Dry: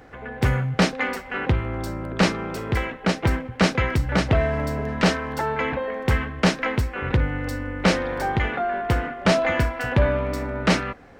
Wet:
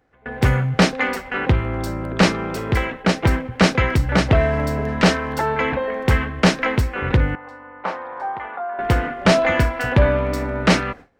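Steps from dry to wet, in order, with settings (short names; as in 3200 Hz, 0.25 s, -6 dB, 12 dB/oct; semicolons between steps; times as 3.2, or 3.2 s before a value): gate with hold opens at -26 dBFS; 7.35–8.79 band-pass 960 Hz, Q 2.8; gain +4 dB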